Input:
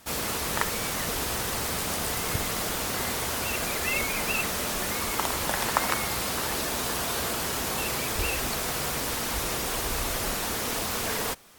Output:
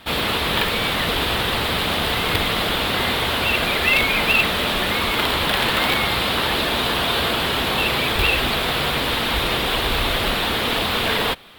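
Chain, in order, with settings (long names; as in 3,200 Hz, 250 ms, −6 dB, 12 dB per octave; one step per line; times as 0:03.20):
wrap-around overflow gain 18.5 dB
high shelf with overshoot 4,700 Hz −10 dB, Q 3
level +9 dB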